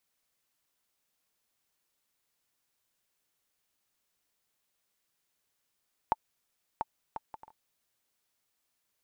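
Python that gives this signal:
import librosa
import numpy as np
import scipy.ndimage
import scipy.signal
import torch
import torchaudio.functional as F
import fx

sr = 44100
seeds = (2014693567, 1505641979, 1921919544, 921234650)

y = fx.bouncing_ball(sr, first_gap_s=0.69, ratio=0.51, hz=882.0, decay_ms=31.0, level_db=-13.0)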